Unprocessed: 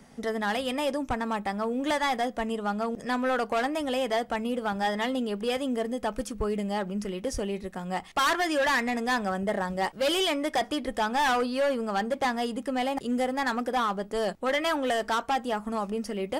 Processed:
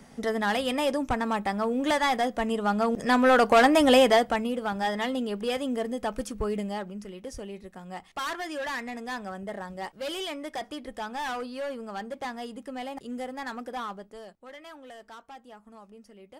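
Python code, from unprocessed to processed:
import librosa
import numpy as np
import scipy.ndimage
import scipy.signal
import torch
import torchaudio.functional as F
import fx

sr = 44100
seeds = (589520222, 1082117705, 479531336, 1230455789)

y = fx.gain(x, sr, db=fx.line((2.39, 2.0), (3.95, 11.0), (4.54, -0.5), (6.59, -0.5), (7.01, -8.0), (13.9, -8.0), (14.33, -19.0)))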